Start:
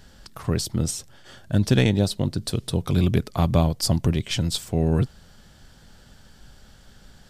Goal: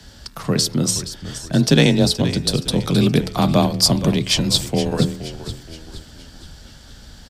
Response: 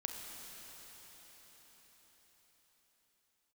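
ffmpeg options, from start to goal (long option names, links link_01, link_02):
-filter_complex "[0:a]equalizer=frequency=4700:width_type=o:width=1.2:gain=5.5,bandreject=frequency=80:width_type=h:width=4,bandreject=frequency=160:width_type=h:width=4,bandreject=frequency=240:width_type=h:width=4,bandreject=frequency=320:width_type=h:width=4,bandreject=frequency=400:width_type=h:width=4,bandreject=frequency=480:width_type=h:width=4,bandreject=frequency=560:width_type=h:width=4,bandreject=frequency=640:width_type=h:width=4,bandreject=frequency=720:width_type=h:width=4,bandreject=frequency=800:width_type=h:width=4,bandreject=frequency=880:width_type=h:width=4,bandreject=frequency=960:width_type=h:width=4,bandreject=frequency=1040:width_type=h:width=4,bandreject=frequency=1120:width_type=h:width=4,bandreject=frequency=1200:width_type=h:width=4,bandreject=frequency=1280:width_type=h:width=4,bandreject=frequency=1360:width_type=h:width=4,bandreject=frequency=1440:width_type=h:width=4,bandreject=frequency=1520:width_type=h:width=4,bandreject=frequency=1600:width_type=h:width=4,bandreject=frequency=1680:width_type=h:width=4,bandreject=frequency=1760:width_type=h:width=4,bandreject=frequency=1840:width_type=h:width=4,bandreject=frequency=1920:width_type=h:width=4,bandreject=frequency=2000:width_type=h:width=4,bandreject=frequency=2080:width_type=h:width=4,bandreject=frequency=2160:width_type=h:width=4,bandreject=frequency=2240:width_type=h:width=4,bandreject=frequency=2320:width_type=h:width=4,bandreject=frequency=2400:width_type=h:width=4,bandreject=frequency=2480:width_type=h:width=4,bandreject=frequency=2560:width_type=h:width=4,bandreject=frequency=2640:width_type=h:width=4,bandreject=frequency=2720:width_type=h:width=4,bandreject=frequency=2800:width_type=h:width=4,acrossover=split=100|880|4300[link_01][link_02][link_03][link_04];[link_01]acompressor=threshold=-40dB:ratio=6[link_05];[link_05][link_02][link_03][link_04]amix=inputs=4:normalize=0,afreqshift=26,asplit=6[link_06][link_07][link_08][link_09][link_10][link_11];[link_07]adelay=472,afreqshift=-55,volume=-12.5dB[link_12];[link_08]adelay=944,afreqshift=-110,volume=-19.1dB[link_13];[link_09]adelay=1416,afreqshift=-165,volume=-25.6dB[link_14];[link_10]adelay=1888,afreqshift=-220,volume=-32.2dB[link_15];[link_11]adelay=2360,afreqshift=-275,volume=-38.7dB[link_16];[link_06][link_12][link_13][link_14][link_15][link_16]amix=inputs=6:normalize=0,volume=6dB"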